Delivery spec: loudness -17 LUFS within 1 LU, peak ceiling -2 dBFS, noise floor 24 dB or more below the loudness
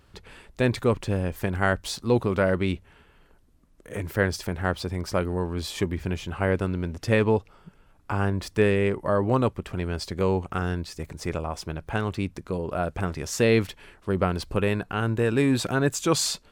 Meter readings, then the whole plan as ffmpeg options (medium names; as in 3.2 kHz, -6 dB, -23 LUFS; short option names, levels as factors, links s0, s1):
loudness -26.0 LUFS; peak level -8.0 dBFS; loudness target -17.0 LUFS
-> -af "volume=2.82,alimiter=limit=0.794:level=0:latency=1"